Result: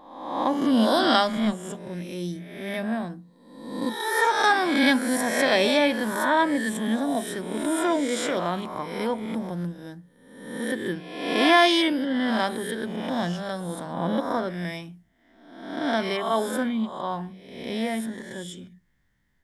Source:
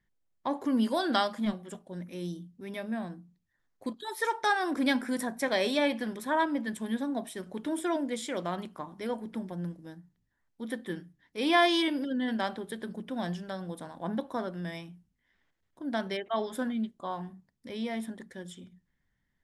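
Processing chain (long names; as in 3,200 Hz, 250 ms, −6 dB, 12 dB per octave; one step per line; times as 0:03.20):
peak hold with a rise ahead of every peak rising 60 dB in 0.93 s
level +5 dB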